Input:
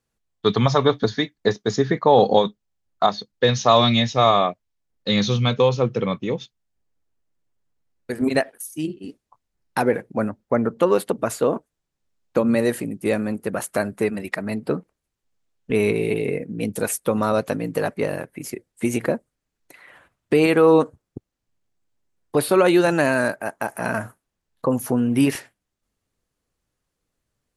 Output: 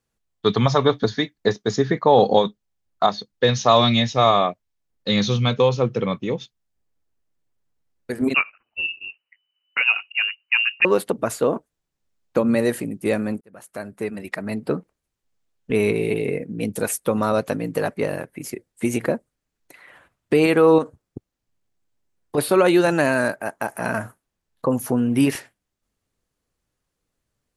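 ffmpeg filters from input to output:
ffmpeg -i in.wav -filter_complex "[0:a]asettb=1/sr,asplit=3[link_01][link_02][link_03];[link_01]atrim=end=8.344[link_04];[link_02]atrim=start=8.34:end=10.85,asetpts=PTS-STARTPTS,afade=type=in:duration=0.004:curve=qsin,afade=type=out:start_time=2.506:duration=0.004:curve=qsin,lowpass=frequency=2600:width_type=q:width=0.5098,lowpass=frequency=2600:width_type=q:width=0.6013,lowpass=frequency=2600:width_type=q:width=0.9,lowpass=frequency=2600:width_type=q:width=2.563,afreqshift=-3000[link_05];[link_03]atrim=start=10.846[link_06];[link_04][link_05]acrossfade=duration=0.004:curve1=hsin:curve2=qsin[link_07];[link_07][link_06]acrossfade=duration=0.004:curve1=qsin:curve2=hsin,asettb=1/sr,asplit=3[link_08][link_09][link_10];[link_08]atrim=end=20.784[link_11];[link_09]atrim=start=20.78:end=22.38,asetpts=PTS-STARTPTS,afade=type=in:duration=0.004:curve=qsin,afade=type=out:start_time=1.596:duration=0.004:curve=qsin,acompressor=threshold=-21dB:ratio=2:attack=3.2:release=140:knee=1:detection=peak[link_12];[link_10]atrim=start=22.376[link_13];[link_11][link_12]acrossfade=duration=0.004:curve1=hsin:curve2=qsin[link_14];[link_14][link_13]acrossfade=duration=0.004:curve1=qsin:curve2=hsin,asplit=2[link_15][link_16];[link_15]atrim=end=13.41,asetpts=PTS-STARTPTS,afade=type=out:start_time=13.406:duration=0.004:curve=hsin[link_17];[link_16]atrim=start=13.41,asetpts=PTS-STARTPTS,afade=type=in:duration=1.2[link_18];[link_17][link_18]concat=n=2:v=0:a=1" out.wav

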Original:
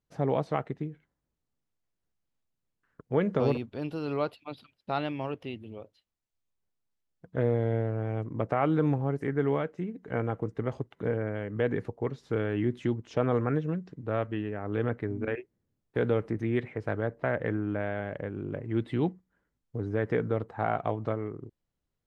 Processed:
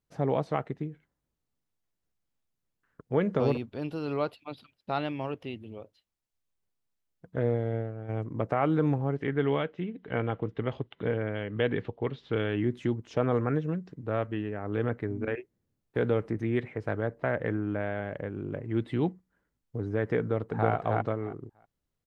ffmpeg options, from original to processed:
ffmpeg -i in.wav -filter_complex "[0:a]asplit=3[link_01][link_02][link_03];[link_01]afade=type=out:start_time=7.38:duration=0.02[link_04];[link_02]agate=range=-33dB:threshold=-25dB:ratio=3:release=100:detection=peak,afade=type=in:start_time=7.38:duration=0.02,afade=type=out:start_time=8.08:duration=0.02[link_05];[link_03]afade=type=in:start_time=8.08:duration=0.02[link_06];[link_04][link_05][link_06]amix=inputs=3:normalize=0,asettb=1/sr,asplit=3[link_07][link_08][link_09];[link_07]atrim=end=9.164[link_10];[link_08]atrim=start=9.16:end=12.56,asetpts=PTS-STARTPTS,afade=type=in:duration=0.004:curve=qsin,afade=type=out:start_time=3.396:duration=0.004:curve=qsin,lowpass=frequency=3300:width_type=q:width=3.5[link_11];[link_09]atrim=start=12.556[link_12];[link_10][link_11]acrossfade=duration=0.004:curve1=hsin:curve2=qsin[link_13];[link_13][link_12]acrossfade=duration=0.004:curve1=qsin:curve2=hsin,asplit=2[link_14][link_15];[link_15]afade=type=in:start_time=20.19:duration=0.01,afade=type=out:start_time=20.69:duration=0.01,aecho=0:1:320|640|960:0.944061|0.141609|0.0212414[link_16];[link_14][link_16]amix=inputs=2:normalize=0" out.wav

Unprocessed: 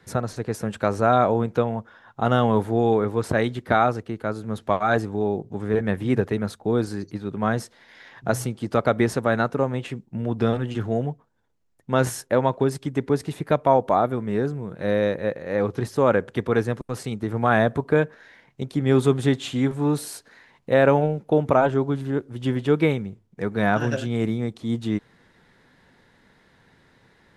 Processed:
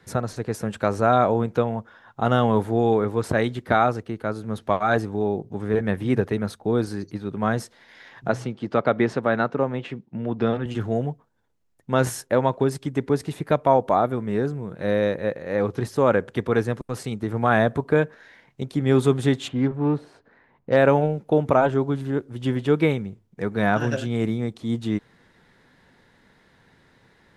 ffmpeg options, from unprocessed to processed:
ffmpeg -i in.wav -filter_complex "[0:a]asettb=1/sr,asplit=3[link_01][link_02][link_03];[link_01]atrim=end=4.044[link_04];[link_02]atrim=start=4.04:end=7.37,asetpts=PTS-STARTPTS,afade=type=in:duration=0.004:curve=qsin,afade=type=out:start_time=3.326:duration=0.004:curve=qsin,bandreject=frequency=7300:width=12[link_05];[link_03]atrim=start=7.366[link_06];[link_04][link_05]acrossfade=duration=0.004:curve1=hsin:curve2=qsin[link_07];[link_07][link_06]acrossfade=duration=0.004:curve1=qsin:curve2=hsin,asettb=1/sr,asplit=3[link_08][link_09][link_10];[link_08]atrim=end=8.284[link_11];[link_09]atrim=start=8.28:end=10.66,asetpts=PTS-STARTPTS,afade=type=in:duration=0.004:curve=qsin,afade=type=out:start_time=2.376:duration=0.004:curve=qsin,highpass=130,lowpass=4000[link_12];[link_10]atrim=start=10.656[link_13];[link_11][link_12]acrossfade=duration=0.004:curve1=hsin:curve2=qsin[link_14];[link_14][link_13]acrossfade=duration=0.004:curve1=qsin:curve2=hsin,asplit=3[link_15][link_16][link_17];[link_15]afade=type=out:start_time=19.47:duration=0.02[link_18];[link_16]adynamicsmooth=sensitivity=1:basefreq=1500,afade=type=in:start_time=19.47:duration=0.02,afade=type=out:start_time=20.75:duration=0.02[link_19];[link_17]afade=type=in:start_time=20.75:duration=0.02[link_20];[link_18][link_19][link_20]amix=inputs=3:normalize=0" out.wav

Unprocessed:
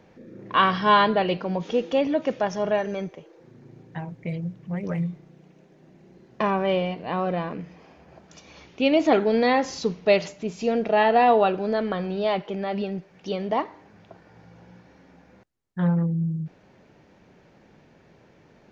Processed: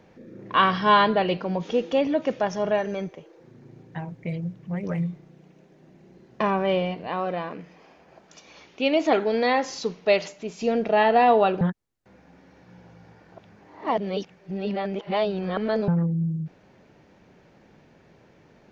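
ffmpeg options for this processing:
ffmpeg -i in.wav -filter_complex "[0:a]asettb=1/sr,asplit=3[link_01][link_02][link_03];[link_01]atrim=end=7.074[link_04];[link_02]atrim=start=7.07:end=10.61,asetpts=PTS-STARTPTS,afade=type=in:duration=0.004:curve=qsin,afade=type=out:start_time=3.536:duration=0.004:curve=qsin,equalizer=frequency=61:width=0.35:gain=-12[link_05];[link_03]atrim=start=10.606[link_06];[link_04][link_05]acrossfade=duration=0.004:curve1=hsin:curve2=qsin[link_07];[link_07][link_06]acrossfade=duration=0.004:curve1=qsin:curve2=hsin,asplit=3[link_08][link_09][link_10];[link_08]atrim=end=11.612[link_11];[link_09]atrim=start=11.608:end=15.882,asetpts=PTS-STARTPTS,areverse[link_12];[link_10]atrim=start=15.878[link_13];[link_11][link_12]acrossfade=duration=0.004:curve1=hsin:curve2=hsin[link_14];[link_14][link_13]acrossfade=duration=0.004:curve1=hsin:curve2=hsin" out.wav

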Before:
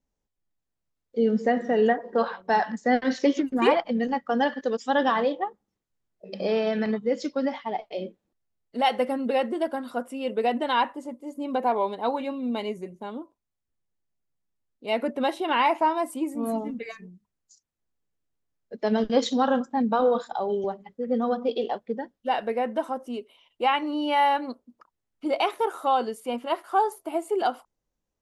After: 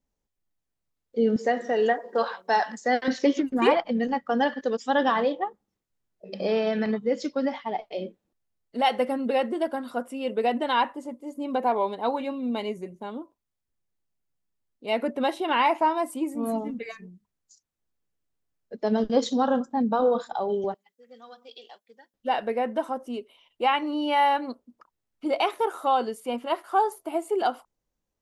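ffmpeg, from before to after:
ffmpeg -i in.wav -filter_complex "[0:a]asettb=1/sr,asplit=3[link_01][link_02][link_03];[link_01]atrim=end=1.364[link_04];[link_02]atrim=start=1.36:end=3.08,asetpts=PTS-STARTPTS,afade=type=in:duration=0.004:curve=qsin,afade=type=out:start_time=1.716:duration=0.004:curve=qsin,bass=frequency=250:gain=-13,treble=frequency=4000:gain=8[link_05];[link_03]atrim=start=3.076[link_06];[link_04][link_05]acrossfade=duration=0.004:curve1=hsin:curve2=qsin[link_07];[link_07][link_06]acrossfade=duration=0.004:curve1=qsin:curve2=hsin,asettb=1/sr,asplit=3[link_08][link_09][link_10];[link_08]atrim=end=18.794[link_11];[link_09]atrim=start=18.79:end=20.19,asetpts=PTS-STARTPTS,afade=type=in:duration=0.004:curve=qsin,afade=type=out:start_time=1.396:duration=0.004:curve=qsin,equalizer=frequency=2300:width=1:gain=-6.5[link_12];[link_10]atrim=start=20.186[link_13];[link_11][link_12]acrossfade=duration=0.004:curve1=hsin:curve2=qsin[link_14];[link_14][link_13]acrossfade=duration=0.004:curve1=qsin:curve2=hsin,asettb=1/sr,asplit=3[link_15][link_16][link_17];[link_15]atrim=end=20.744[link_18];[link_16]atrim=start=20.74:end=22.14,asetpts=PTS-STARTPTS,afade=type=in:duration=0.004:curve=qsin,afade=type=out:start_time=1.396:duration=0.004:curve=qsin,aderivative[link_19];[link_17]atrim=start=22.136[link_20];[link_18][link_19]acrossfade=duration=0.004:curve1=hsin:curve2=qsin[link_21];[link_21][link_20]acrossfade=duration=0.004:curve1=qsin:curve2=hsin" out.wav

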